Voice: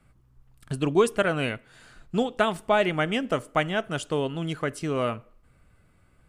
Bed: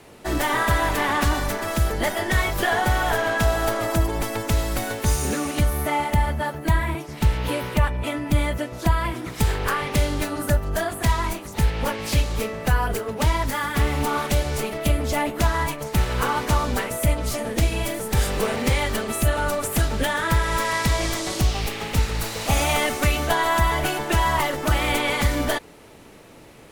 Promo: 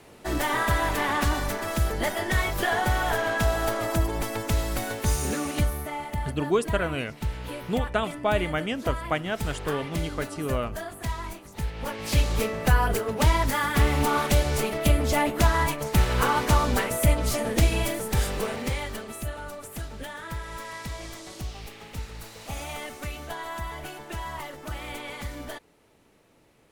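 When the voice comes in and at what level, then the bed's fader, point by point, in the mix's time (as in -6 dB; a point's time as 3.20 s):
5.55 s, -3.0 dB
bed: 5.62 s -3.5 dB
5.90 s -10.5 dB
11.73 s -10.5 dB
12.26 s 0 dB
17.75 s 0 dB
19.48 s -14.5 dB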